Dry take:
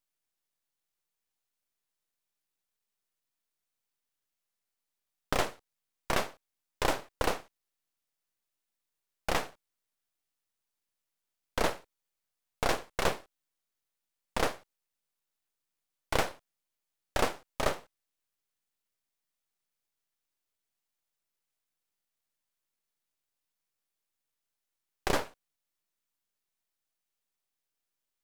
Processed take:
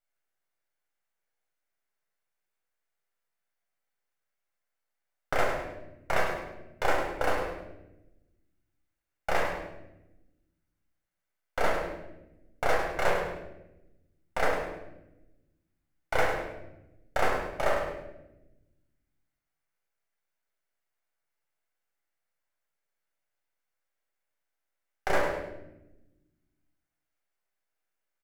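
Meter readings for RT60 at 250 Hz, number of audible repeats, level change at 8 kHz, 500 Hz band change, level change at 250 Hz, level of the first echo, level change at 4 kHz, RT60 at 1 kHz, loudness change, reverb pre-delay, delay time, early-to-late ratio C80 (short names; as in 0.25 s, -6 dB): 1.7 s, 2, -5.0 dB, +5.0 dB, 0.0 dB, -8.5 dB, -3.5 dB, 0.80 s, +2.5 dB, 7 ms, 0.102 s, 5.0 dB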